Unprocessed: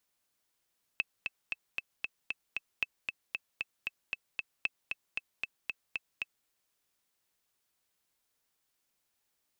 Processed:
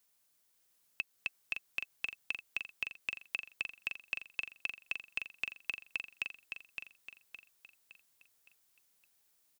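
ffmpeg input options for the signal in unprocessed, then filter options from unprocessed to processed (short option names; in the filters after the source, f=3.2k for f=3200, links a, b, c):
-f lavfi -i "aevalsrc='pow(10,(-16-4.5*gte(mod(t,7*60/230),60/230))/20)*sin(2*PI*2620*mod(t,60/230))*exp(-6.91*mod(t,60/230)/0.03)':d=5.47:s=44100"
-filter_complex "[0:a]highshelf=f=6.1k:g=8,alimiter=limit=-20dB:level=0:latency=1:release=240,asplit=2[a][b];[b]aecho=0:1:564|1128|1692|2256|2820:0.501|0.216|0.0927|0.0398|0.0171[c];[a][c]amix=inputs=2:normalize=0"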